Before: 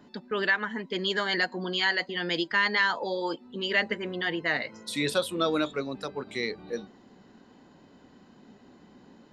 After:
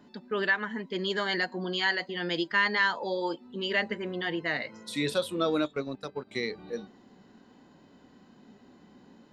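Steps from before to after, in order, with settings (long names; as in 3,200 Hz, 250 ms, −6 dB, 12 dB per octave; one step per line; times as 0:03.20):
harmonic and percussive parts rebalanced percussive −5 dB
0:05.64–0:06.40: transient designer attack +3 dB, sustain −11 dB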